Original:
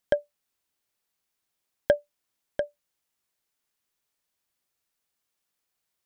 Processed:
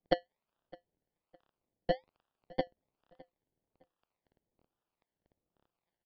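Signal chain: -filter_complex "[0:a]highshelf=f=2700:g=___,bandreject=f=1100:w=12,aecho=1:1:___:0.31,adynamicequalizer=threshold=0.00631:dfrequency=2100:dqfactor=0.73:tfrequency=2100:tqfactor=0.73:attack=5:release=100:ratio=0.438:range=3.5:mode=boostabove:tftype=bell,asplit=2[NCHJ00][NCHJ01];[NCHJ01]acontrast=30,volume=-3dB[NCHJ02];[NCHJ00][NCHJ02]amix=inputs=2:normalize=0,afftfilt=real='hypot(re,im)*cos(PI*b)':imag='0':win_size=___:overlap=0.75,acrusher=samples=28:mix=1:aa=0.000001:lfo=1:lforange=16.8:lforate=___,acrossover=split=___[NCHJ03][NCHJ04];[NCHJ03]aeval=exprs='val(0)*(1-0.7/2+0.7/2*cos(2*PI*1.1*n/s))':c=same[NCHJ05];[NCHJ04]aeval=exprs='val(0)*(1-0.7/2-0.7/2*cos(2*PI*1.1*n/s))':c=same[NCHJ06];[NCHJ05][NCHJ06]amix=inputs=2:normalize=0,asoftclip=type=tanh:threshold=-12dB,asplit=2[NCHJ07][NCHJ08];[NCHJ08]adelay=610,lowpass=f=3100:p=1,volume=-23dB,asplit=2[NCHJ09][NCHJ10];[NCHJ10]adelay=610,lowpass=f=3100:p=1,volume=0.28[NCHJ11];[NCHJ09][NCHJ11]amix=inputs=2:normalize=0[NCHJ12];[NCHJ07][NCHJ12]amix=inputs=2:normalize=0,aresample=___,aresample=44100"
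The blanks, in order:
-3, 5.8, 1024, 1.2, 700, 11025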